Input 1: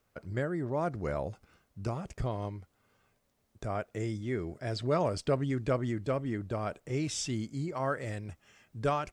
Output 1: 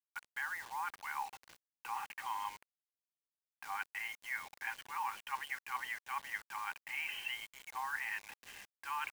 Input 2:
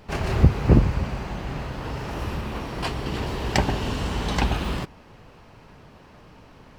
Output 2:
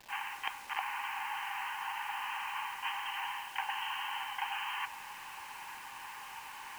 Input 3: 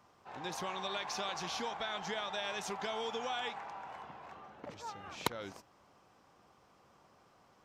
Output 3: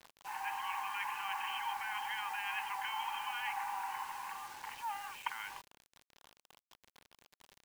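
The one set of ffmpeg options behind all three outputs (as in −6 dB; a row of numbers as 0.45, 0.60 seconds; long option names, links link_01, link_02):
-af "aeval=exprs='(mod(3.35*val(0)+1,2)-1)/3.35':channel_layout=same,afftfilt=real='re*between(b*sr/4096,770,3200)':imag='im*between(b*sr/4096,770,3200)':win_size=4096:overlap=0.75,areverse,acompressor=threshold=-44dB:ratio=8,areverse,acrusher=bits=9:mix=0:aa=0.000001,bandreject=frequency=1300:width=5.2,volume=9.5dB"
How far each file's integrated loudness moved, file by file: −7.0, −13.0, 0.0 LU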